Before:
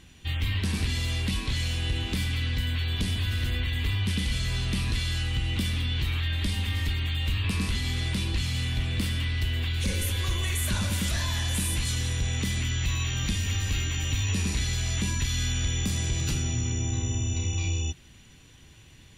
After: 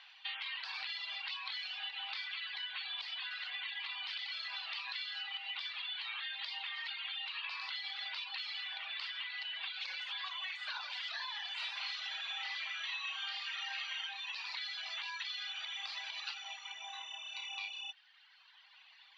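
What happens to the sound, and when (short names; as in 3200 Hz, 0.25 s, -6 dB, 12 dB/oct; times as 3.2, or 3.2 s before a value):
11.54–14.03 reverb throw, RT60 0.97 s, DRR -6 dB
whole clip: reverb removal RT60 1.9 s; Chebyshev band-pass 780–4600 Hz, order 4; compressor, threshold -41 dBFS; gain +2.5 dB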